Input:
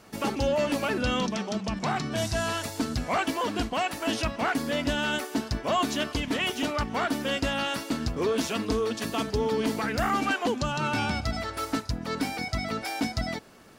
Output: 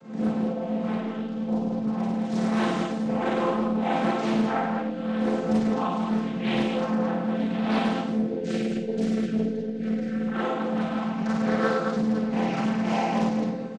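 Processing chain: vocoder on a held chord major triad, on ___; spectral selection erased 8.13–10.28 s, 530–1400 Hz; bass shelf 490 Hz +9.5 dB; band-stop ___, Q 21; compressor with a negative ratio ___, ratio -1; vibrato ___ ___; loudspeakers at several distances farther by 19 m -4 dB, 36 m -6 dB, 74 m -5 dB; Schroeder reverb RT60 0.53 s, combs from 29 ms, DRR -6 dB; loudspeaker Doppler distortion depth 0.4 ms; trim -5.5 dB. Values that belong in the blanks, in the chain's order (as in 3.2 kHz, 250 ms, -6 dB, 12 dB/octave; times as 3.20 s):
F3, 5.2 kHz, -31 dBFS, 8.7 Hz, 38 cents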